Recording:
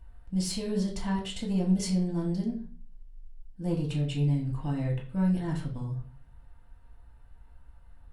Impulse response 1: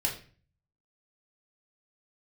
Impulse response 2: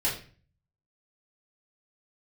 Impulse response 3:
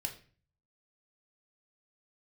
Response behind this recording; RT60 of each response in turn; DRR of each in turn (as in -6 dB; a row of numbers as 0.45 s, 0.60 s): 1; 0.40 s, 0.40 s, 0.40 s; -2.0 dB, -8.0 dB, 2.5 dB